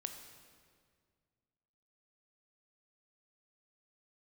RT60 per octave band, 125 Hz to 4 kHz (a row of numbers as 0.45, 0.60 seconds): 2.5, 2.3, 2.1, 1.8, 1.7, 1.5 seconds